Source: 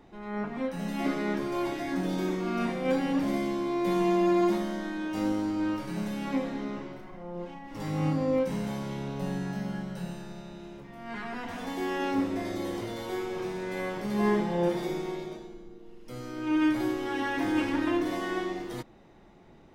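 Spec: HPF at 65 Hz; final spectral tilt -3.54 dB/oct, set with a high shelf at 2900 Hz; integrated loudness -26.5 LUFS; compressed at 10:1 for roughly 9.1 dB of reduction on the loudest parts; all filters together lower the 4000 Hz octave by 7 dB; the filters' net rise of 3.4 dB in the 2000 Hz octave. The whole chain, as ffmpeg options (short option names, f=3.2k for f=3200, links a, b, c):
-af "highpass=65,equalizer=f=2k:t=o:g=8.5,highshelf=f=2.9k:g=-7.5,equalizer=f=4k:t=o:g=-8,acompressor=threshold=-30dB:ratio=10,volume=9dB"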